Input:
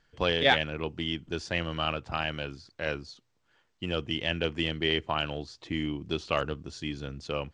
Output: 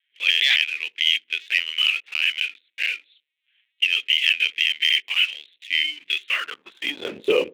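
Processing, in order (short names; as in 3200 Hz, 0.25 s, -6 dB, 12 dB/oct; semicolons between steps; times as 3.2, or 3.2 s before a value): tracing distortion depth 0.077 ms; recorder AGC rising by 10 dB/s; LPC vocoder at 8 kHz pitch kept; dynamic EQ 1400 Hz, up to +3 dB, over -45 dBFS, Q 0.99; sample leveller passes 2; high-pass sweep 2400 Hz -> 450 Hz, 6.08–7.28; band shelf 950 Hz -12.5 dB; dark delay 78 ms, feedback 38%, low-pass 510 Hz, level -20 dB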